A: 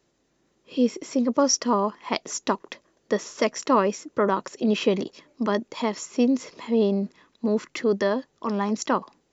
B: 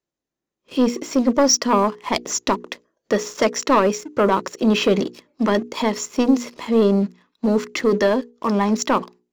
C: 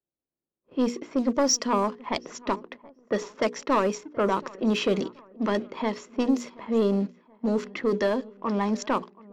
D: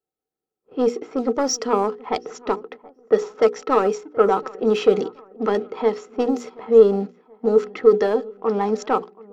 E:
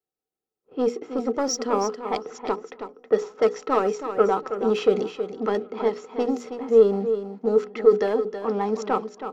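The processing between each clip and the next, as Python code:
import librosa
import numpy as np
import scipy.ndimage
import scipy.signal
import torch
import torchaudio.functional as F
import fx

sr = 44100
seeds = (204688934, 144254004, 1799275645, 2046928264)

y1 = fx.leveller(x, sr, passes=2)
y1 = fx.noise_reduce_blind(y1, sr, reduce_db=14)
y1 = fx.hum_notches(y1, sr, base_hz=60, count=8)
y2 = fx.echo_feedback(y1, sr, ms=728, feedback_pct=46, wet_db=-22.5)
y2 = fx.dynamic_eq(y2, sr, hz=8500.0, q=2.8, threshold_db=-45.0, ratio=4.0, max_db=4)
y2 = fx.env_lowpass(y2, sr, base_hz=880.0, full_db=-12.0)
y2 = F.gain(torch.from_numpy(y2), -7.0).numpy()
y3 = fx.small_body(y2, sr, hz=(450.0, 760.0, 1300.0), ring_ms=65, db=17)
y3 = F.gain(torch.from_numpy(y3), -1.0).numpy()
y4 = y3 + 10.0 ** (-9.5 / 20.0) * np.pad(y3, (int(322 * sr / 1000.0), 0))[:len(y3)]
y4 = F.gain(torch.from_numpy(y4), -3.5).numpy()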